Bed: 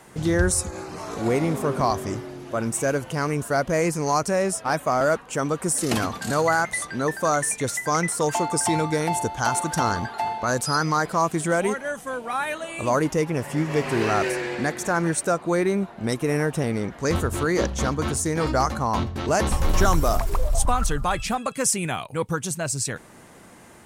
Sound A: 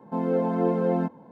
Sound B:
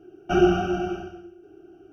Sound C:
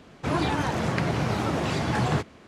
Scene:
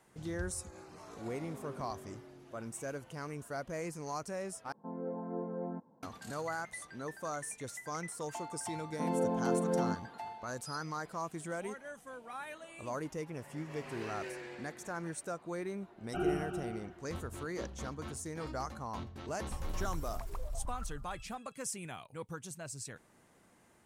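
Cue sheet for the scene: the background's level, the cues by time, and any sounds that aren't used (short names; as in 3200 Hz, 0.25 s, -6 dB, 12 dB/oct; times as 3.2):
bed -17.5 dB
4.72 replace with A -15.5 dB + LPF 1500 Hz 24 dB/oct
8.87 add A -8 dB
15.84 add B -14.5 dB + LPF 3100 Hz
not used: C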